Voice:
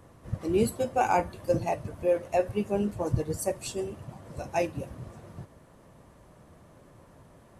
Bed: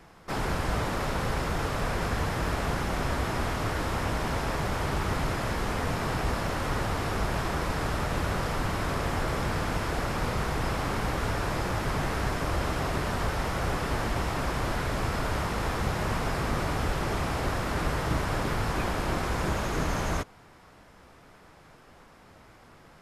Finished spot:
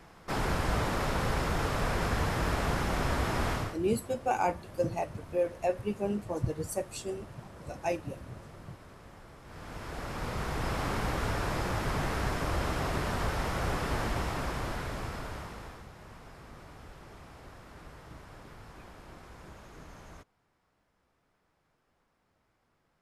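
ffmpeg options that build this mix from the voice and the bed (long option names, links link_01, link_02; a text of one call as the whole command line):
ffmpeg -i stem1.wav -i stem2.wav -filter_complex "[0:a]adelay=3300,volume=-4dB[link_01];[1:a]volume=20dB,afade=type=out:start_time=3.53:duration=0.24:silence=0.0749894,afade=type=in:start_time=9.43:duration=1.41:silence=0.0891251,afade=type=out:start_time=14.04:duration=1.83:silence=0.11885[link_02];[link_01][link_02]amix=inputs=2:normalize=0" out.wav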